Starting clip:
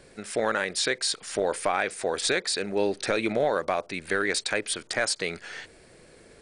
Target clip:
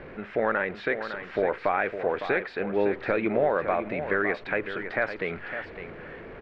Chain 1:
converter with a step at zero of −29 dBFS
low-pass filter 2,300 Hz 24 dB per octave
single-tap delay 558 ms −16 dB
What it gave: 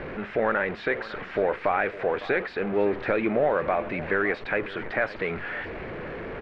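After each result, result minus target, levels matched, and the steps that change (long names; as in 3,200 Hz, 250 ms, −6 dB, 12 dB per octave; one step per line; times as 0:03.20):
converter with a step at zero: distortion +8 dB; echo-to-direct −6.5 dB
change: converter with a step at zero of −38 dBFS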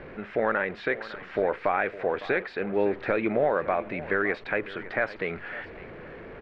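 echo-to-direct −6.5 dB
change: single-tap delay 558 ms −9.5 dB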